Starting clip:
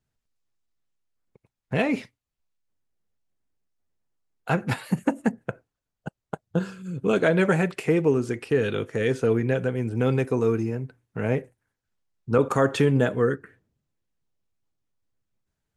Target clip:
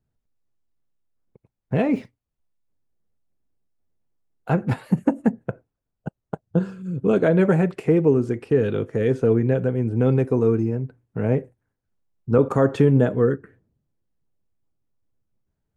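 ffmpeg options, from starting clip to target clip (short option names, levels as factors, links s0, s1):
-filter_complex "[0:a]tiltshelf=f=1200:g=7,asettb=1/sr,asplit=3[s0][s1][s2];[s0]atrim=end=1.954[s3];[s1]atrim=start=1.95:end=4.49,asetpts=PTS-STARTPTS,afade=t=in:d=0.004:c=qsin,afade=t=out:st=2.536:d=0.004:c=qsin,acrusher=bits=9:mode=log:mix=0:aa=0.000001[s4];[s2]atrim=start=4.486[s5];[s3][s4]acrossfade=d=0.004:c1=hsin:c2=qsin[s6];[s6][s5]acrossfade=d=0.004:c1=qsin:c2=hsin,volume=0.794"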